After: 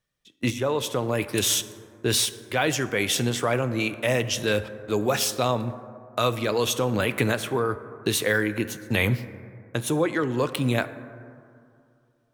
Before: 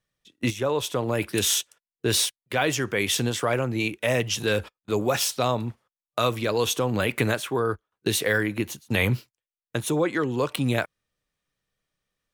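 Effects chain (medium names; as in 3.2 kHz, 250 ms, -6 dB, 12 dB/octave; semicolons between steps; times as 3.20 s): plate-style reverb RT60 2.5 s, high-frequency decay 0.3×, DRR 12.5 dB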